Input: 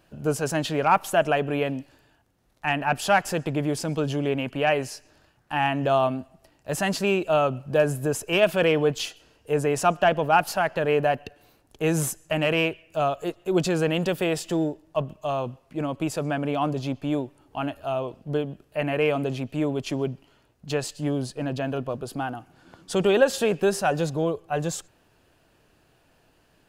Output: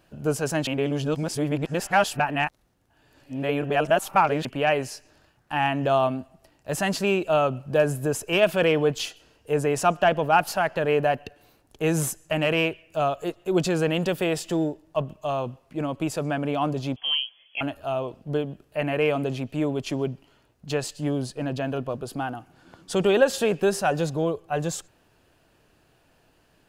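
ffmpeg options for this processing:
-filter_complex "[0:a]asettb=1/sr,asplit=3[s0][s1][s2];[s0]atrim=end=16.964[s3];[s1]atrim=start=16.96:end=17.61,asetpts=PTS-STARTPTS,afade=t=in:d=0.004:c=qsin,afade=t=out:st=0.646:d=0.004:c=qsin,lowpass=f=2900:t=q:w=0.5098,lowpass=f=2900:t=q:w=0.6013,lowpass=f=2900:t=q:w=0.9,lowpass=f=2900:t=q:w=2.563,afreqshift=-3400[s4];[s2]atrim=start=17.606[s5];[s3][s4]acrossfade=d=0.004:c1=hsin:c2=qsin[s6];[s6][s5]acrossfade=d=0.004:c1=qsin:c2=hsin,asplit=3[s7][s8][s9];[s7]atrim=end=0.672[s10];[s8]atrim=start=0.668:end=4.452,asetpts=PTS-STARTPTS,areverse[s11];[s9]atrim=start=4.448[s12];[s10][s11]acrossfade=d=0.004:c1=hsin:c2=hsin[s13];[s13][s12]acrossfade=d=0.004:c1=hsin:c2=hsin"

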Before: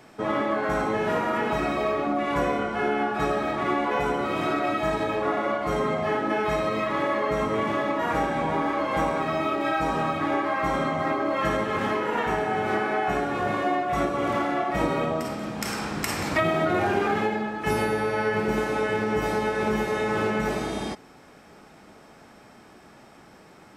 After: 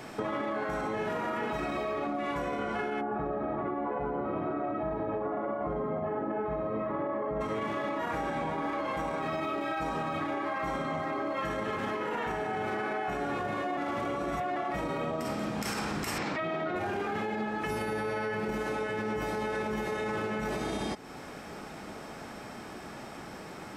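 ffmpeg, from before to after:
-filter_complex "[0:a]asplit=3[s0][s1][s2];[s0]afade=t=out:st=3:d=0.02[s3];[s1]lowpass=1000,afade=t=in:st=3:d=0.02,afade=t=out:st=7.4:d=0.02[s4];[s2]afade=t=in:st=7.4:d=0.02[s5];[s3][s4][s5]amix=inputs=3:normalize=0,asettb=1/sr,asplit=3[s6][s7][s8];[s6]atrim=end=16.184[s9];[s7]atrim=start=16.18:end=16.76,asetpts=PTS-STARTPTS,afade=t=in:d=0.004:c=qsin,afade=t=out:st=0.576:d=0.004:c=qsin,highpass=160,lowpass=4400[s10];[s8]atrim=start=16.756[s11];[s9][s10]acrossfade=d=0.004:c1=hsin:c2=qsin[s12];[s12][s11]acrossfade=d=0.004:c1=qsin:c2=hsin,asplit=3[s13][s14][s15];[s13]atrim=end=13.772[s16];[s14]atrim=start=13.768:end=14.562,asetpts=PTS-STARTPTS,areverse[s17];[s15]atrim=start=14.558[s18];[s16][s17]acrossfade=d=0.004:c1=hsin:c2=hsin[s19];[s19][s18]acrossfade=d=0.004:c1=hsin:c2=hsin,alimiter=limit=0.075:level=0:latency=1,acompressor=threshold=0.01:ratio=3,volume=2.24"

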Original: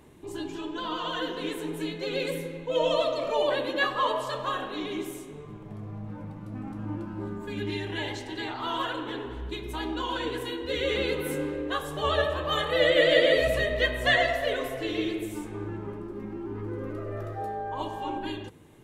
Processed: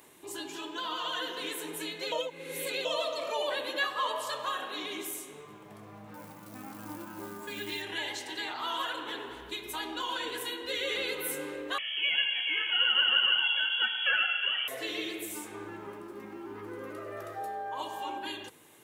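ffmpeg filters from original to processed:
-filter_complex "[0:a]asettb=1/sr,asplit=3[s0][s1][s2];[s0]atrim=end=6.144[s3];[s1]atrim=start=6.14:end=7.82,asetpts=PTS-STARTPTS,afade=t=in:d=0.004:c=qsin,afade=t=out:st=1.676:d=0.004:c=qsin,acrusher=bits=7:mode=log:mix=0:aa=0.000001[s4];[s2]atrim=start=7.816[s5];[s3][s4]acrossfade=d=0.004:c1=hsin:c2=qsin[s6];[s6][s5]acrossfade=d=0.004:c1=qsin:c2=hsin,asettb=1/sr,asplit=3[s7][s8][s9];[s7]atrim=end=11.784[s10];[s8]atrim=start=11.78:end=14.68,asetpts=PTS-STARTPTS,afade=t=in:d=0.004:c=qsin,afade=t=out:st=2.896:d=0.004:c=qsin,lowpass=f=2900:t=q:w=0.5098,lowpass=f=2900:t=q:w=0.6013,lowpass=f=2900:t=q:w=0.9,lowpass=f=2900:t=q:w=2.563,afreqshift=-3400[s11];[s9]atrim=start=14.676[s12];[s10][s11]acrossfade=d=0.004:c1=hsin:c2=qsin[s13];[s13][s12]acrossfade=d=0.004:c1=qsin:c2=hsin,asplit=3[s14][s15][s16];[s14]atrim=end=2.122[s17];[s15]atrim=start=2.118:end=2.852,asetpts=PTS-STARTPTS,areverse[s18];[s16]atrim=start=2.848[s19];[s17][s18]acrossfade=d=0.004:c1=hsin:c2=hsin[s20];[s20][s19]acrossfade=d=0.004:c1=hsin:c2=hsin,highpass=f=1000:p=1,highshelf=f=9000:g=11,acompressor=threshold=0.00891:ratio=1.5,volume=1.5"

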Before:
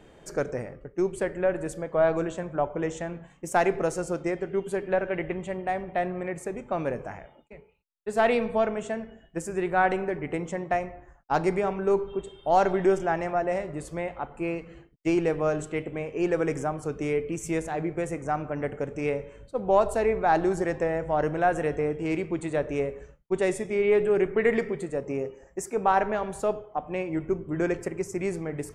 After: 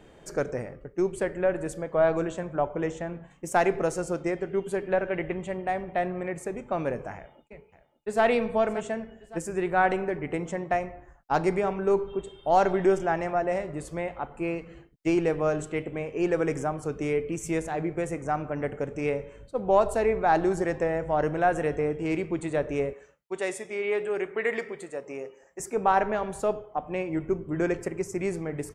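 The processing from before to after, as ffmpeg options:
-filter_complex "[0:a]asettb=1/sr,asplit=3[s0][s1][s2];[s0]atrim=end=2.914[s3];[s1]atrim=start=2.91:end=3.31,asetpts=PTS-STARTPTS,afade=t=in:d=0.004:c=qsin,afade=t=out:st=0.396:d=0.004:c=qsin,highshelf=f=3400:g=-8[s4];[s2]atrim=start=3.306[s5];[s3][s4]acrossfade=d=0.004:c1=hsin:c2=qsin[s6];[s6][s5]acrossfade=d=0.004:c1=qsin:c2=hsin,asplit=2[s7][s8];[s8]afade=t=in:st=7.15:d=0.01,afade=t=out:st=8.23:d=0.01,aecho=0:1:570|1140|1710|2280:0.199526|0.0897868|0.0404041|0.0181818[s9];[s7][s9]amix=inputs=2:normalize=0,asettb=1/sr,asplit=3[s10][s11][s12];[s10]atrim=end=22.934[s13];[s11]atrim=start=22.93:end=25.6,asetpts=PTS-STARTPTS,afade=t=in:d=0.004:c=qsin,afade=t=out:st=2.666:d=0.004:c=qsin,highpass=f=750:p=1[s14];[s12]atrim=start=25.596[s15];[s13][s14]acrossfade=d=0.004:c1=hsin:c2=qsin[s16];[s16][s15]acrossfade=d=0.004:c1=qsin:c2=hsin"

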